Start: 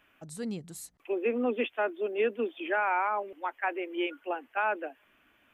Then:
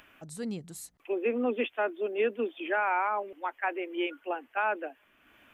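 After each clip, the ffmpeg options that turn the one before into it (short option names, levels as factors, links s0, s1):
-af "acompressor=mode=upward:threshold=0.00282:ratio=2.5"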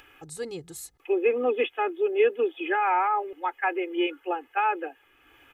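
-af "aecho=1:1:2.4:0.91,volume=1.19"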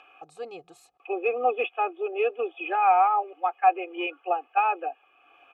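-filter_complex "[0:a]acontrast=85,asplit=3[s0][s1][s2];[s0]bandpass=f=730:t=q:w=8,volume=1[s3];[s1]bandpass=f=1090:t=q:w=8,volume=0.501[s4];[s2]bandpass=f=2440:t=q:w=8,volume=0.355[s5];[s3][s4][s5]amix=inputs=3:normalize=0,volume=1.78"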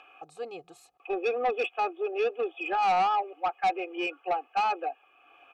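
-af "asoftclip=type=tanh:threshold=0.0944"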